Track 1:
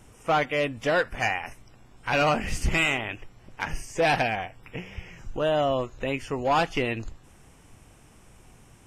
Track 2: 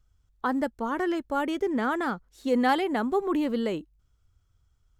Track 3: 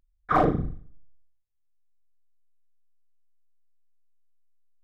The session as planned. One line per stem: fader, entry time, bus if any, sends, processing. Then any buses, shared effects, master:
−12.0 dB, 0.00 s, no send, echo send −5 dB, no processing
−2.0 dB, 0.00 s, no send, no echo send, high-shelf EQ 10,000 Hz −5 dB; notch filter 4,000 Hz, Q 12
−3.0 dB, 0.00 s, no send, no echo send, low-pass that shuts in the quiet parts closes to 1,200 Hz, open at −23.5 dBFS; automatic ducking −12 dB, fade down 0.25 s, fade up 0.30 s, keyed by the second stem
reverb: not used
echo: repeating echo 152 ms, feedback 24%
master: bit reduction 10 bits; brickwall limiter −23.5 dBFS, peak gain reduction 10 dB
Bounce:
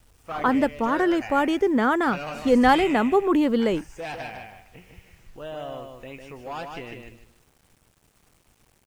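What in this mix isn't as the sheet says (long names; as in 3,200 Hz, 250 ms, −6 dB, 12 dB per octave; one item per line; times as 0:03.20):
stem 2 −2.0 dB → +6.0 dB
master: missing brickwall limiter −23.5 dBFS, peak gain reduction 10 dB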